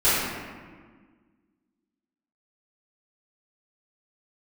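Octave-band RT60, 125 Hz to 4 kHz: 1.8, 2.2, 1.7, 1.5, 1.4, 0.95 s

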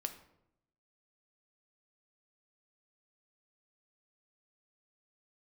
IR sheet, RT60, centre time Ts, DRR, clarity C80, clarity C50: 0.80 s, 10 ms, 6.5 dB, 14.5 dB, 11.5 dB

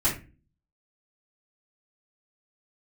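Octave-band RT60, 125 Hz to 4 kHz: 0.60, 0.55, 0.40, 0.25, 0.30, 0.20 s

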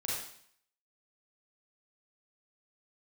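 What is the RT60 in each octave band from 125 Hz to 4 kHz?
0.65, 0.60, 0.60, 0.65, 0.65, 0.65 s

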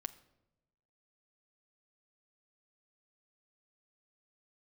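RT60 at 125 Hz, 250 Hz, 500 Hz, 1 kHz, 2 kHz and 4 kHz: 1.3, 1.2, 1.1, 0.75, 0.65, 0.55 s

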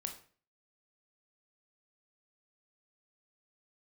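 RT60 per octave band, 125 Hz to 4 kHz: 0.50, 0.50, 0.45, 0.40, 0.40, 0.35 s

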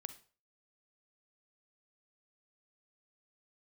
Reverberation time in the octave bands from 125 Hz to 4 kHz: 0.40, 0.35, 0.40, 0.40, 0.35, 0.35 s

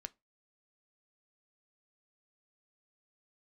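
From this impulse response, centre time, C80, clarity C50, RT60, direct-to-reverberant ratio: 2 ms, 36.0 dB, 27.5 dB, 0.20 s, 12.0 dB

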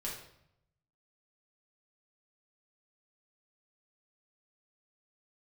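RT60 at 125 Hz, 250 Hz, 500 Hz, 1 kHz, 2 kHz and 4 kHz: 1.2, 0.85, 0.75, 0.75, 0.65, 0.60 s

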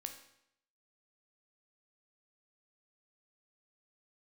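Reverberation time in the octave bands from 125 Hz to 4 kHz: 0.75, 0.75, 0.75, 0.75, 0.75, 0.70 s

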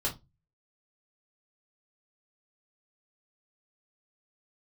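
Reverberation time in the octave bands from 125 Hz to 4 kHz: 0.50, 0.30, 0.25, 0.20, 0.15, 0.20 s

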